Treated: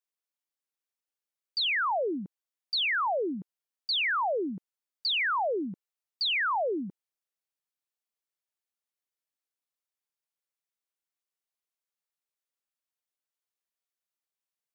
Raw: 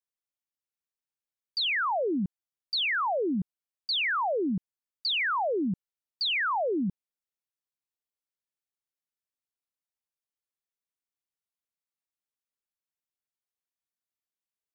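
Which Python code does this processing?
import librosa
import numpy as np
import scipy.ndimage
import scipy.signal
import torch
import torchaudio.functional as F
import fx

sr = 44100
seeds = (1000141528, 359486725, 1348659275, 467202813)

y = scipy.signal.sosfilt(scipy.signal.butter(2, 330.0, 'highpass', fs=sr, output='sos'), x)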